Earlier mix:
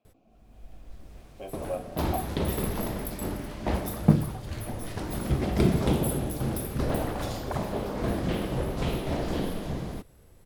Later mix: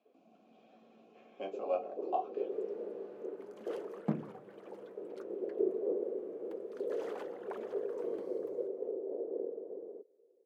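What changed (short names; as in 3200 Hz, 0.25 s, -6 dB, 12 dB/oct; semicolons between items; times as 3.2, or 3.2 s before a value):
first sound: add Butterworth band-pass 440 Hz, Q 3.2; second sound -9.5 dB; master: add HPF 200 Hz 24 dB/oct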